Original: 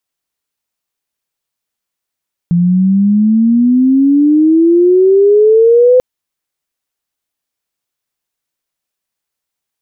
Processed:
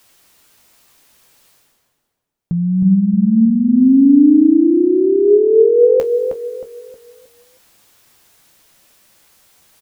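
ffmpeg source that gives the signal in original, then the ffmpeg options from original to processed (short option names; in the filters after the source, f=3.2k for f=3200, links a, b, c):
-f lavfi -i "aevalsrc='pow(10,(-7+3.5*t/3.49)/20)*sin(2*PI*170*3.49/log(510/170)*(exp(log(510/170)*t/3.49)-1))':d=3.49:s=44100"
-filter_complex "[0:a]areverse,acompressor=mode=upward:threshold=-24dB:ratio=2.5,areverse,flanger=delay=8.6:depth=7.1:regen=52:speed=0.39:shape=triangular,asplit=2[a][b];[b]adelay=314,lowpass=f=880:p=1,volume=-5dB,asplit=2[c][d];[d]adelay=314,lowpass=f=880:p=1,volume=0.4,asplit=2[e][f];[f]adelay=314,lowpass=f=880:p=1,volume=0.4,asplit=2[g][h];[h]adelay=314,lowpass=f=880:p=1,volume=0.4,asplit=2[i][j];[j]adelay=314,lowpass=f=880:p=1,volume=0.4[k];[a][c][e][g][i][k]amix=inputs=6:normalize=0"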